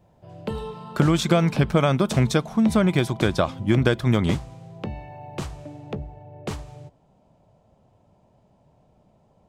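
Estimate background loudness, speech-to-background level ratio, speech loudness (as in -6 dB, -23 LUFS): -36.0 LUFS, 14.5 dB, -21.5 LUFS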